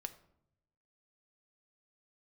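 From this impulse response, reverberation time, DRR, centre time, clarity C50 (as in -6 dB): 0.75 s, 8.0 dB, 5 ms, 14.5 dB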